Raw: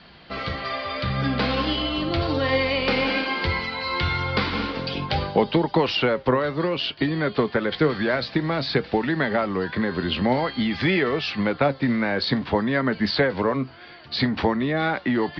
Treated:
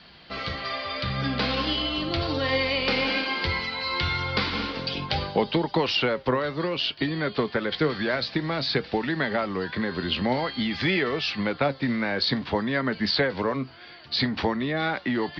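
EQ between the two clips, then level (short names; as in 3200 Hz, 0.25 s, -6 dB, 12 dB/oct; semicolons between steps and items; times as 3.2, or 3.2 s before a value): high shelf 3400 Hz +9 dB; -4.0 dB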